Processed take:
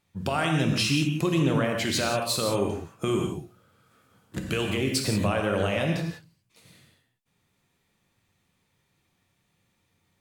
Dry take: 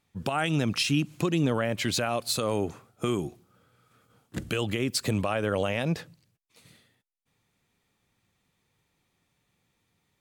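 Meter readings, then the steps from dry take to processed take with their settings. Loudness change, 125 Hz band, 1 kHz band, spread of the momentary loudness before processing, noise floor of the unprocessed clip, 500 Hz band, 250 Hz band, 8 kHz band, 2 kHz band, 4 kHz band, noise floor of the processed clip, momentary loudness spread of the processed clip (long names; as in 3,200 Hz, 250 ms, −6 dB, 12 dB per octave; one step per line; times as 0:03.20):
+2.0 dB, +2.5 dB, +2.0 dB, 8 LU, −76 dBFS, +2.0 dB, +2.5 dB, +2.0 dB, +2.5 dB, +2.5 dB, −73 dBFS, 8 LU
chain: reverb whose tail is shaped and stops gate 200 ms flat, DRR 1.5 dB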